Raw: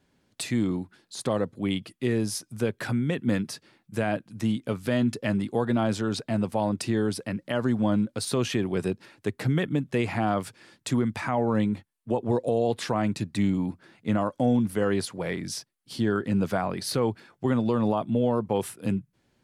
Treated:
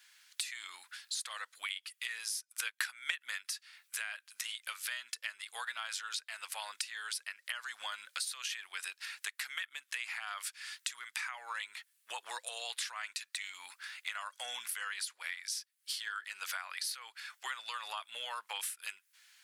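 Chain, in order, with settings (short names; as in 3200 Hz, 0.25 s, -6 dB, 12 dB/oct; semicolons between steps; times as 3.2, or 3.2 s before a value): HPF 1500 Hz 24 dB/oct; high shelf 5700 Hz +4.5 dB; compressor 8:1, threshold -49 dBFS, peak gain reduction 22 dB; 2.38–3.21 transient shaper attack +6 dB, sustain -8 dB; gain +12 dB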